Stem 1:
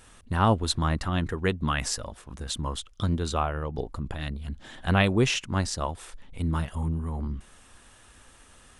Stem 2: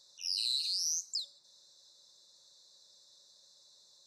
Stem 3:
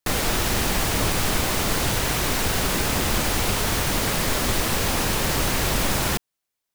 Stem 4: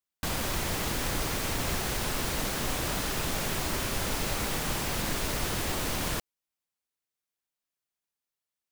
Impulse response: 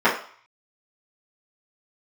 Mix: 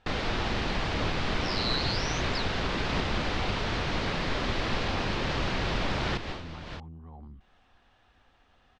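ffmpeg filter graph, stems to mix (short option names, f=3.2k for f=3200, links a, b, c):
-filter_complex "[0:a]equalizer=f=750:w=5.3:g=10.5,acompressor=threshold=-36dB:ratio=2.5,volume=-9.5dB,asplit=2[a][b];[1:a]adelay=1200,volume=2.5dB[c];[2:a]volume=-6dB[d];[3:a]adelay=600,volume=3dB[e];[b]apad=whole_len=410832[f];[e][f]sidechaincompress=threshold=-59dB:ratio=5:attack=33:release=264[g];[a][c][d][g]amix=inputs=4:normalize=0,lowpass=f=4.4k:w=0.5412,lowpass=f=4.4k:w=1.3066"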